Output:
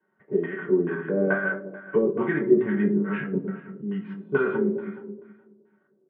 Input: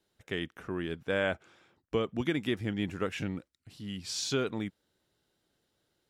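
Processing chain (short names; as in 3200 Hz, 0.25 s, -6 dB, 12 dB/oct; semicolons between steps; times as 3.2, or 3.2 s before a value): regenerating reverse delay 0.106 s, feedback 63%, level -6.5 dB; resonant high shelf 4800 Hz -9.5 dB, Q 1.5; comb 5.3 ms, depth 52%; 2.95–3.38 negative-ratio compressor -33 dBFS, ratio -0.5; flange 0.37 Hz, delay 8.9 ms, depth 4 ms, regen +79%; LFO low-pass square 2.3 Hz 450–1600 Hz; air absorption 270 m; reverb RT60 0.35 s, pre-delay 3 ms, DRR -2.5 dB; gain -5.5 dB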